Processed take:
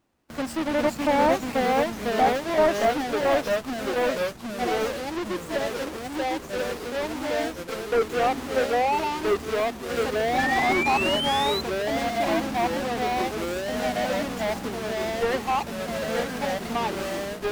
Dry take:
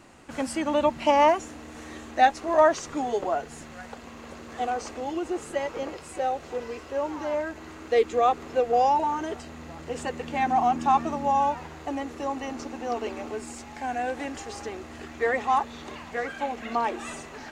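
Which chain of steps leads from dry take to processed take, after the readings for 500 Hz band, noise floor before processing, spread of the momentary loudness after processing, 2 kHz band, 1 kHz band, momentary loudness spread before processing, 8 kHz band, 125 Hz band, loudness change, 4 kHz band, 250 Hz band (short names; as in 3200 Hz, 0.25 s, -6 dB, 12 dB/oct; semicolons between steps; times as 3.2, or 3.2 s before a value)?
+3.0 dB, -44 dBFS, 8 LU, +5.5 dB, -1.0 dB, 18 LU, +4.0 dB, +6.5 dB, +1.5 dB, +10.0 dB, +4.0 dB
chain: half-waves squared off; gate with hold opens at -30 dBFS; echoes that change speed 0.355 s, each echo -2 st, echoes 3; painted sound rise, 10.38–11.61, 1700–4100 Hz -22 dBFS; slew limiter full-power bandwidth 230 Hz; gain -4 dB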